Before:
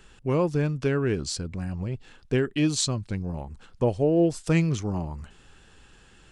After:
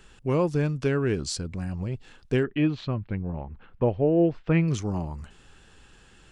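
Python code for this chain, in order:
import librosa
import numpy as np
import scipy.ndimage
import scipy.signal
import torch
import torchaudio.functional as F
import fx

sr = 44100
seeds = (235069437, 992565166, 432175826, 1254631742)

y = fx.lowpass(x, sr, hz=2700.0, slope=24, at=(2.43, 4.68))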